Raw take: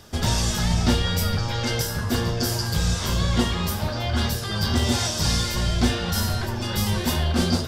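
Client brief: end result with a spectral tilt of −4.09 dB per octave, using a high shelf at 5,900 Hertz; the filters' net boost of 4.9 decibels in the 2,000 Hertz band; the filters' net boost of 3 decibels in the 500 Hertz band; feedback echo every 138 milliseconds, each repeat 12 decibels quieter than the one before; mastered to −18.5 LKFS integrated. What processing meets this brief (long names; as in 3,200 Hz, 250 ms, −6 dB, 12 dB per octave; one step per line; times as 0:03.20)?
parametric band 500 Hz +3.5 dB
parametric band 2,000 Hz +5.5 dB
high-shelf EQ 5,900 Hz +5.5 dB
repeating echo 138 ms, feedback 25%, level −12 dB
level +2.5 dB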